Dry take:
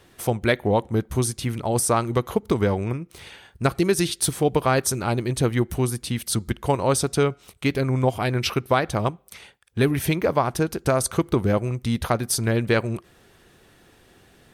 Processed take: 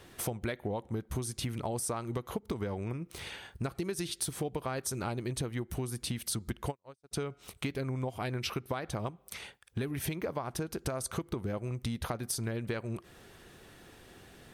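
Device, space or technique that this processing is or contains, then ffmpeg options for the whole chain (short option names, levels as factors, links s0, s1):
serial compression, peaks first: -filter_complex "[0:a]acompressor=threshold=0.0447:ratio=8,acompressor=threshold=0.0126:ratio=1.5,asplit=3[s0][s1][s2];[s0]afade=t=out:st=6.7:d=0.02[s3];[s1]agate=range=0.00355:threshold=0.0316:ratio=16:detection=peak,afade=t=in:st=6.7:d=0.02,afade=t=out:st=7.11:d=0.02[s4];[s2]afade=t=in:st=7.11:d=0.02[s5];[s3][s4][s5]amix=inputs=3:normalize=0"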